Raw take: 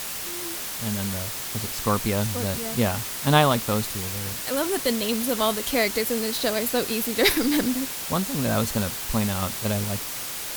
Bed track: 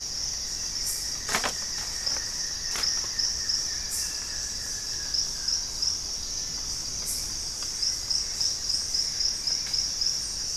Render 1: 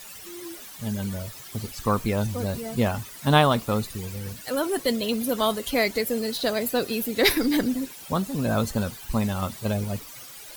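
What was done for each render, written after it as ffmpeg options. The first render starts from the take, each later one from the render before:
-af "afftdn=nr=14:nf=-33"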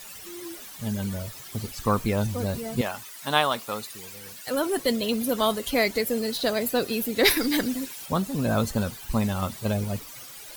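-filter_complex "[0:a]asettb=1/sr,asplit=3[a][b][c];[a]atrim=end=2.814[d];[b]atrim=start=2.81:end=4.47,asetpts=PTS-STARTPTS,afade=t=in:d=0.004:c=qsin,afade=t=out:st=1.656:d=0.004:c=qsin,highpass=f=900:p=1[e];[c]atrim=start=4.466[f];[d][e]acrossfade=d=0.004:c1=hsin:c2=qsin[g];[g][f]acrossfade=d=0.004:c1=qsin:c2=hsin,asettb=1/sr,asplit=3[h][i][j];[h]atrim=end=7.284[k];[i]atrim=start=7.28:end=8.06,asetpts=PTS-STARTPTS,afade=t=in:d=0.004:c=qsin,afade=t=out:st=0.776:d=0.004:c=qsin,tiltshelf=f=870:g=-3.5[l];[j]atrim=start=8.056[m];[k][l]acrossfade=d=0.004:c1=hsin:c2=qsin[n];[n][m]acrossfade=d=0.004:c1=qsin:c2=hsin"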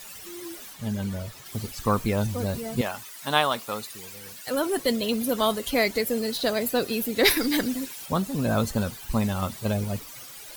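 -filter_complex "[0:a]asettb=1/sr,asplit=3[a][b][c];[a]atrim=end=0.734[d];[b]atrim=start=0.73:end=1.46,asetpts=PTS-STARTPTS,afade=t=in:d=0.004:c=qsin,afade=t=out:st=0.726:d=0.004:c=qsin,highshelf=f=6.1k:g=-6.5[e];[c]atrim=start=1.456[f];[d][e]acrossfade=d=0.004:c1=hsin:c2=qsin[g];[g][f]acrossfade=d=0.004:c1=qsin:c2=hsin"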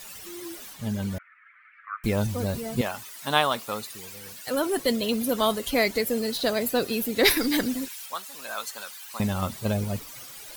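-filter_complex "[0:a]asettb=1/sr,asplit=3[a][b][c];[a]atrim=end=1.184[d];[b]atrim=start=1.18:end=2.04,asetpts=PTS-STARTPTS,afade=t=in:d=0.004:c=qsin,afade=t=out:st=0.856:d=0.004:c=qsin,asuperpass=centerf=1700:order=8:qfactor=1.7[e];[c]atrim=start=2.036[f];[d][e]acrossfade=d=0.004:c1=hsin:c2=qsin[g];[g][f]acrossfade=d=0.004:c1=qsin:c2=hsin,asettb=1/sr,asplit=3[h][i][j];[h]atrim=end=7.884[k];[i]atrim=start=7.88:end=9.2,asetpts=PTS-STARTPTS,afade=t=in:d=0.004:c=qsin,afade=t=out:st=1.316:d=0.004:c=qsin,highpass=1.2k[l];[j]atrim=start=9.196[m];[k][l]acrossfade=d=0.004:c1=hsin:c2=qsin[n];[n][m]acrossfade=d=0.004:c1=qsin:c2=hsin"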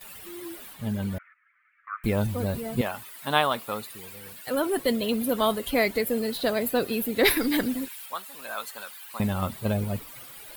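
-af "agate=range=-11dB:threshold=-48dB:ratio=16:detection=peak,equalizer=f=6k:w=1.6:g=-11"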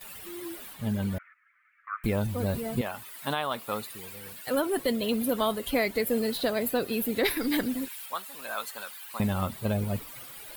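-af "alimiter=limit=-15.5dB:level=0:latency=1:release=344"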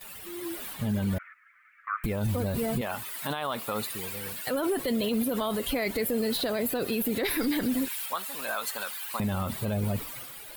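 -af "dynaudnorm=f=100:g=11:m=6.5dB,alimiter=limit=-20dB:level=0:latency=1:release=44"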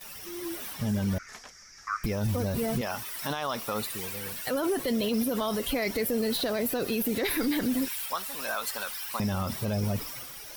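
-filter_complex "[1:a]volume=-20.5dB[a];[0:a][a]amix=inputs=2:normalize=0"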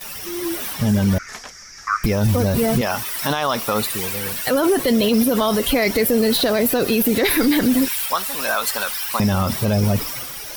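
-af "volume=11dB"

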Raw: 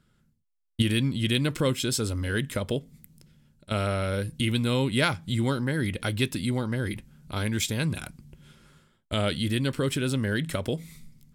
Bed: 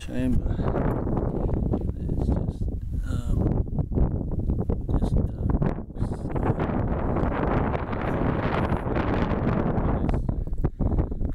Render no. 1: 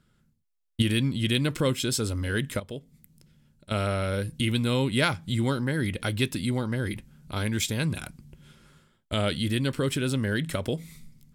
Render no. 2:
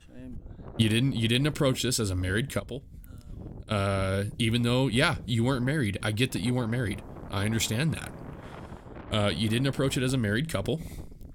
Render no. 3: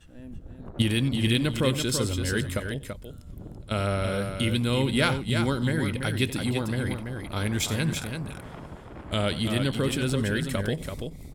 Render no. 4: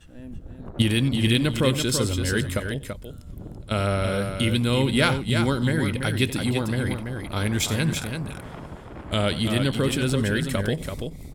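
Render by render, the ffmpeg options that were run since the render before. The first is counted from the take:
-filter_complex "[0:a]asplit=2[a][b];[a]atrim=end=2.6,asetpts=PTS-STARTPTS,afade=t=out:st=2.596:d=0.004:c=hsin:silence=0.237137[c];[b]atrim=start=2.6,asetpts=PTS-STARTPTS,afade=t=in:d=1.31:c=qsin:silence=0.237137[d];[c][d]concat=n=2:v=0:a=1"
-filter_complex "[1:a]volume=-18dB[a];[0:a][a]amix=inputs=2:normalize=0"
-af "aecho=1:1:91|334:0.141|0.473"
-af "volume=3dB"

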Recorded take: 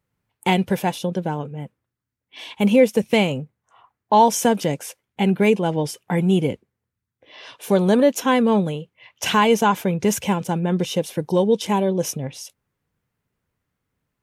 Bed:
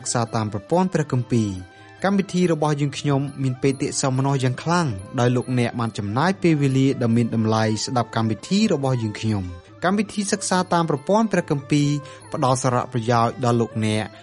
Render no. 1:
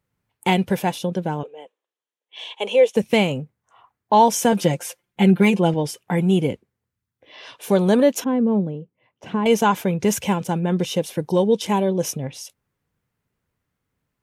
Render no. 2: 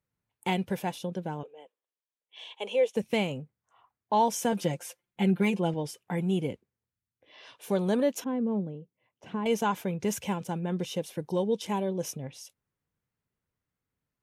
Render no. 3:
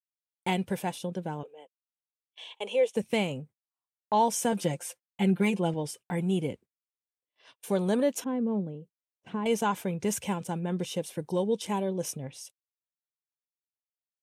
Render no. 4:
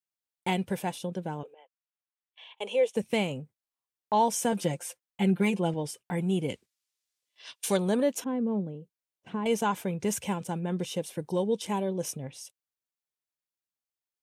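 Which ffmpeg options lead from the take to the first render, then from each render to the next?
-filter_complex "[0:a]asettb=1/sr,asplit=3[a][b][c];[a]atrim=end=1.434[d];[b]atrim=start=1.43:end=2.96,asetpts=PTS-STARTPTS,afade=t=in:d=0.004:c=qsin,afade=t=out:st=1.526:d=0.004:c=qsin,highpass=f=430:w=0.5412,highpass=f=430:w=1.3066,equalizer=f=450:t=q:w=4:g=4,equalizer=f=1.4k:t=q:w=4:g=-8,equalizer=f=2.1k:t=q:w=4:g=-4,equalizer=f=3.2k:t=q:w=4:g=6,equalizer=f=4.9k:t=q:w=4:g=-9,equalizer=f=8.5k:t=q:w=4:g=-6,lowpass=f=9.2k:w=0.5412,lowpass=f=9.2k:w=1.3066[e];[c]atrim=start=2.956[f];[d][e]acrossfade=d=0.004:c1=hsin:c2=qsin[g];[g][f]acrossfade=d=0.004:c1=qsin:c2=hsin,asettb=1/sr,asplit=3[h][i][j];[h]atrim=end=4.524[k];[i]atrim=start=4.52:end=5.74,asetpts=PTS-STARTPTS,afade=t=in:d=0.004:c=qsin,afade=t=out:st=1.216:d=0.004:c=qsin,aecho=1:1:5.7:0.78,atrim=end_sample=53802[l];[j]atrim=start=5.736[m];[k][l]acrossfade=d=0.004:c1=hsin:c2=qsin[n];[n][m]acrossfade=d=0.004:c1=qsin:c2=hsin,asettb=1/sr,asplit=3[o][p][q];[o]atrim=end=8.244[r];[p]atrim=start=8.24:end=9.46,asetpts=PTS-STARTPTS,afade=t=in:d=0.004:c=qsin,afade=t=out:st=1.216:d=0.004:c=qsin,bandpass=f=240:t=q:w=0.89[s];[q]atrim=start=9.456[t];[r][s]acrossfade=d=0.004:c1=hsin:c2=qsin[u];[u][t]acrossfade=d=0.004:c1=qsin:c2=hsin"
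-af "volume=-10dB"
-af "agate=range=-39dB:threshold=-49dB:ratio=16:detection=peak,equalizer=f=8.6k:w=2.9:g=7"
-filter_complex "[0:a]asettb=1/sr,asplit=3[a][b][c];[a]atrim=end=1.544[d];[b]atrim=start=1.54:end=2.58,asetpts=PTS-STARTPTS,afade=t=in:d=0.004:c=qsin,afade=t=out:st=1.036:d=0.004:c=qsin,highpass=790,lowpass=2.6k[e];[c]atrim=start=2.576[f];[d][e]acrossfade=d=0.004:c1=hsin:c2=qsin[g];[g][f]acrossfade=d=0.004:c1=qsin:c2=hsin,asplit=3[h][i][j];[h]afade=t=out:st=6.48:d=0.02[k];[i]equalizer=f=5.4k:w=0.33:g=14.5,afade=t=in:st=6.48:d=0.02,afade=t=out:st=7.76:d=0.02[l];[j]afade=t=in:st=7.76:d=0.02[m];[k][l][m]amix=inputs=3:normalize=0"

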